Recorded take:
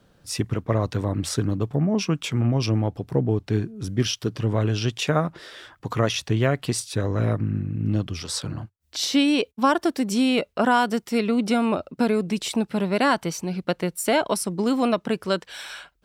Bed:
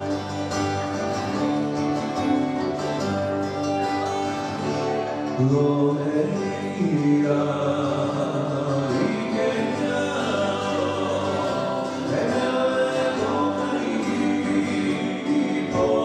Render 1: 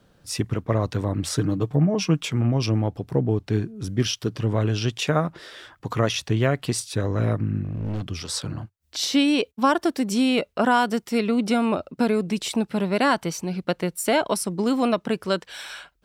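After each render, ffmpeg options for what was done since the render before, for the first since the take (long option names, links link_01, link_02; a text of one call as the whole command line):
ffmpeg -i in.wav -filter_complex "[0:a]asettb=1/sr,asplit=3[link_01][link_02][link_03];[link_01]atrim=end=1.334[link_04];[link_02]atrim=start=1.33:end=2.26,asetpts=PTS-STARTPTS,afade=type=in:duration=0.004:curve=qsin,afade=type=out:start_time=0.926:duration=0.004:curve=qsin,aecho=1:1:6.5:0.54,atrim=end_sample=41013[link_05];[link_03]atrim=start=2.256[link_06];[link_04][link_05]acrossfade=duration=0.004:curve1=hsin:curve2=qsin[link_07];[link_07][link_06]acrossfade=duration=0.004:curve1=qsin:curve2=hsin,asettb=1/sr,asplit=3[link_08][link_09][link_10];[link_08]atrim=end=7.634[link_11];[link_09]atrim=start=7.63:end=8.09,asetpts=PTS-STARTPTS,afade=type=in:duration=0.004:curve=qsin,afade=type=out:start_time=0.456:duration=0.004:curve=qsin,asoftclip=type=hard:threshold=-24.5dB[link_12];[link_10]atrim=start=8.086[link_13];[link_11][link_12]acrossfade=duration=0.004:curve1=hsin:curve2=qsin[link_14];[link_14][link_13]acrossfade=duration=0.004:curve1=qsin:curve2=hsin" out.wav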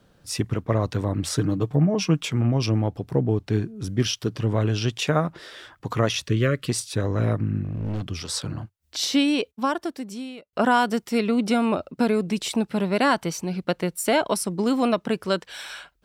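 ffmpeg -i in.wav -filter_complex "[0:a]asplit=3[link_01][link_02][link_03];[link_01]afade=type=out:start_time=6.26:duration=0.02[link_04];[link_02]asuperstop=centerf=820:order=12:qfactor=1.8,afade=type=in:start_time=6.26:duration=0.02,afade=type=out:start_time=6.68:duration=0.02[link_05];[link_03]afade=type=in:start_time=6.68:duration=0.02[link_06];[link_04][link_05][link_06]amix=inputs=3:normalize=0,asplit=2[link_07][link_08];[link_07]atrim=end=10.53,asetpts=PTS-STARTPTS,afade=type=out:start_time=9.07:duration=1.46[link_09];[link_08]atrim=start=10.53,asetpts=PTS-STARTPTS,afade=type=in:duration=0.004:curve=hsin[link_10];[link_09][link_10]concat=n=2:v=0:a=1" out.wav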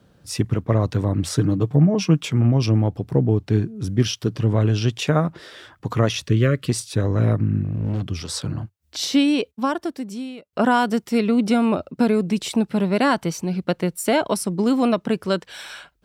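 ffmpeg -i in.wav -af "highpass=54,lowshelf=frequency=360:gain=5.5" out.wav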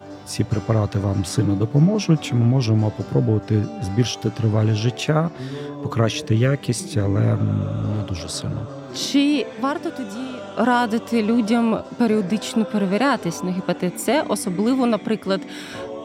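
ffmpeg -i in.wav -i bed.wav -filter_complex "[1:a]volume=-11.5dB[link_01];[0:a][link_01]amix=inputs=2:normalize=0" out.wav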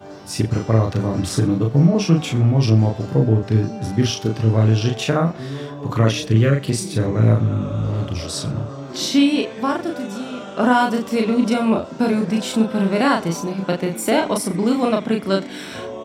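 ffmpeg -i in.wav -filter_complex "[0:a]asplit=2[link_01][link_02];[link_02]adelay=36,volume=-3dB[link_03];[link_01][link_03]amix=inputs=2:normalize=0,aecho=1:1:88:0.0891" out.wav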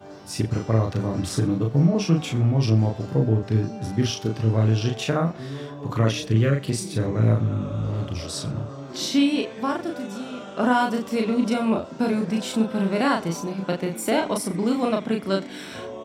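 ffmpeg -i in.wav -af "volume=-4.5dB" out.wav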